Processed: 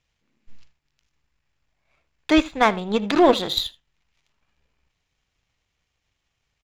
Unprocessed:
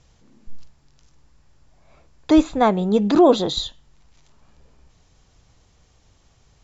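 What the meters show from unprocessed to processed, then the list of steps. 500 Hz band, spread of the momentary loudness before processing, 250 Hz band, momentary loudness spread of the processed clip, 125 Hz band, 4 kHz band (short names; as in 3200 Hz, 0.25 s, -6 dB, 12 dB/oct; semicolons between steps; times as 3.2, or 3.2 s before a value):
-2.5 dB, 10 LU, -4.0 dB, 10 LU, -7.0 dB, +2.5 dB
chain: bell 2400 Hz +13.5 dB 1.6 oct; echo 79 ms -16 dB; power-law curve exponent 1.4; gain -1 dB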